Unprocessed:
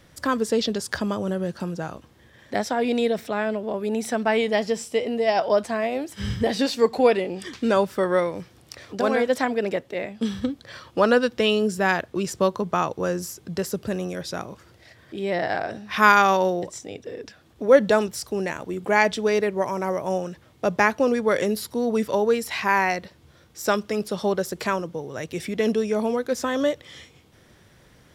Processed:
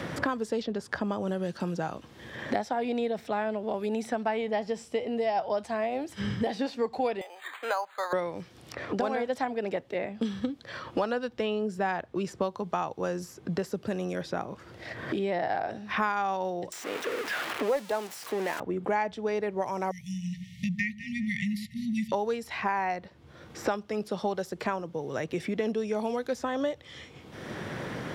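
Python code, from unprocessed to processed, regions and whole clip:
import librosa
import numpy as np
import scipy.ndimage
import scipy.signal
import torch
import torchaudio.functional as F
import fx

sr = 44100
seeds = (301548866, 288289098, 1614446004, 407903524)

y = fx.chain(x, sr, fx.highpass(hz=740.0, slope=24),
    fx.resample_bad(factor=8, down='filtered', up='hold'),
    fx.band_squash(depth_pct=40), at=(7.21, 8.13))
y = fx.chain(y, sr, fx.crossing_spikes(level_db=-11.5),
    fx.highpass(hz=280.0, slope=12),
    fx.doppler_dist(depth_ms=0.12), at=(16.72, 18.6))
y = fx.chain(y, sr, fx.brickwall_bandstop(low_hz=220.0, high_hz=1800.0),
    fx.echo_alternate(ms=100, hz=1000.0, feedback_pct=51, wet_db=-11.5), at=(19.91, 22.12))
y = fx.dynamic_eq(y, sr, hz=800.0, q=3.4, threshold_db=-39.0, ratio=4.0, max_db=8)
y = fx.lowpass(y, sr, hz=3200.0, slope=6)
y = fx.band_squash(y, sr, depth_pct=100)
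y = F.gain(torch.from_numpy(y), -8.5).numpy()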